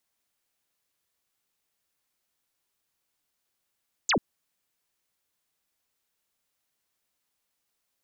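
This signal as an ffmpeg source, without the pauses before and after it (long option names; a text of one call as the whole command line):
ffmpeg -f lavfi -i "aevalsrc='0.0944*clip(t/0.002,0,1)*clip((0.09-t)/0.002,0,1)*sin(2*PI*7900*0.09/log(160/7900)*(exp(log(160/7900)*t/0.09)-1))':duration=0.09:sample_rate=44100" out.wav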